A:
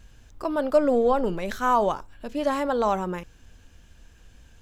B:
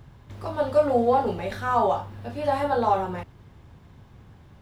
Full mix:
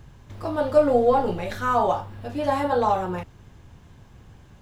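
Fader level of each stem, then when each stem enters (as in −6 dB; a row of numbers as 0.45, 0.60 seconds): −4.5, 0.0 decibels; 0.00, 0.00 seconds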